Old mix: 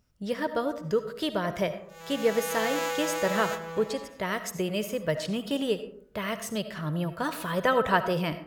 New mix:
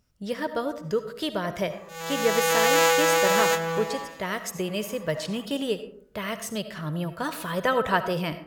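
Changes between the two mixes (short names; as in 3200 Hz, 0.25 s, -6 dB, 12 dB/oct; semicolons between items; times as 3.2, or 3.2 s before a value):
background +10.0 dB; master: add bell 9000 Hz +2.5 dB 2.7 oct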